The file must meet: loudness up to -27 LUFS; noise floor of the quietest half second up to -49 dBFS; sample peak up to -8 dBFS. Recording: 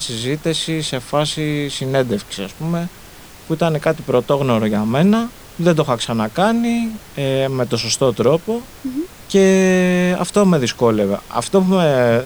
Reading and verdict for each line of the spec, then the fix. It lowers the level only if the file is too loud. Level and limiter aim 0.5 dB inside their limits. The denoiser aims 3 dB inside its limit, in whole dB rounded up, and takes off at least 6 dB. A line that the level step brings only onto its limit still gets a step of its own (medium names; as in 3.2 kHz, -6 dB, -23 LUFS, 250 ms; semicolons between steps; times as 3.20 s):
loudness -17.5 LUFS: fail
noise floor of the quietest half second -39 dBFS: fail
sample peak -2.0 dBFS: fail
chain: noise reduction 6 dB, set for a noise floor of -39 dBFS; trim -10 dB